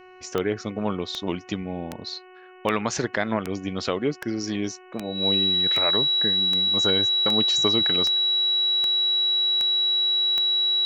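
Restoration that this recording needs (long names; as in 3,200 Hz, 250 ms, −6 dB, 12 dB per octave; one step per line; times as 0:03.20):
click removal
hum removal 368.5 Hz, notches 8
notch filter 3,900 Hz, Q 30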